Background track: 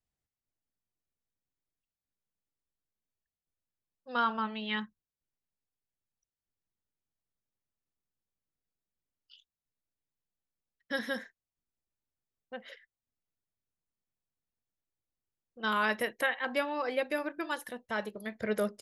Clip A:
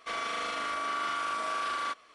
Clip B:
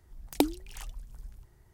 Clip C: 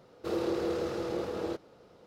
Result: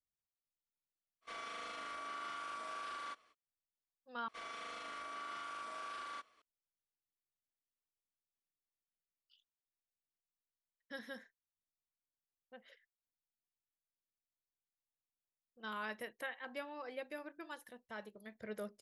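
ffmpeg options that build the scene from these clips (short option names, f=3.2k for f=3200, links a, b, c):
-filter_complex "[1:a]asplit=2[a][b];[0:a]volume=-13.5dB,asplit=2[c][d];[c]atrim=end=4.284[e];[b]atrim=end=2.14,asetpts=PTS-STARTPTS,volume=-13.5dB[f];[d]atrim=start=6.416[g];[a]atrim=end=2.14,asetpts=PTS-STARTPTS,volume=-12.5dB,afade=t=in:d=0.05,afade=t=out:st=2.09:d=0.05,adelay=1210[h];[e][f]acrossfade=d=0.004:c1=hsin:c2=hsin[i];[i][g]acrossfade=d=0.004:c1=hsin:c2=hsin[j];[j][h]amix=inputs=2:normalize=0"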